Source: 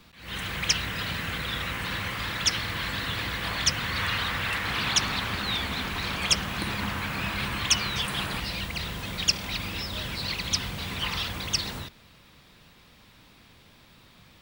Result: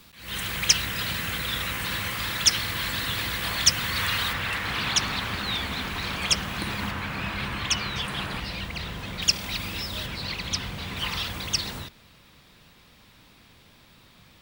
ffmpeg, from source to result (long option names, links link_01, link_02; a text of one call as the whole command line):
ffmpeg -i in.wav -af "asetnsamples=nb_out_samples=441:pad=0,asendcmd='4.33 equalizer g 0.5;6.91 equalizer g -7;9.22 equalizer g 4;10.06 equalizer g -5;10.97 equalizer g 2',equalizer=frequency=15000:width_type=o:width=1.7:gain=11" out.wav